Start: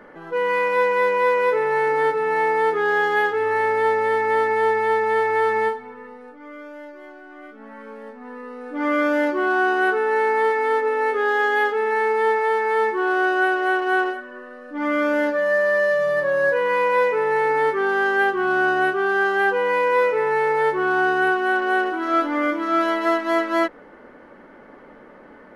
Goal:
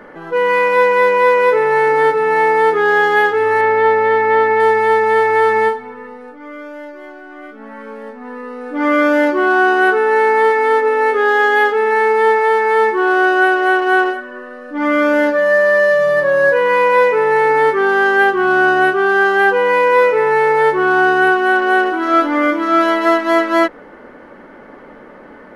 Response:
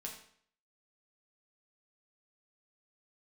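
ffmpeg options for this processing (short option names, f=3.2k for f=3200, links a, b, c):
-filter_complex "[0:a]asettb=1/sr,asplit=3[a][b][c];[a]atrim=end=3.614[d];[b]atrim=start=3.61:end=4.6,asetpts=PTS-STARTPTS,afade=t=in:d=0.004:c=qsin,afade=t=out:st=0.986:d=0.004:c=qsin,lowpass=3.8k[e];[c]atrim=start=4.596[f];[d][e]acrossfade=d=0.004:c1=hsin:c2=qsin[g];[g][f]acrossfade=d=0.004:c1=qsin:c2=hsin,volume=7dB"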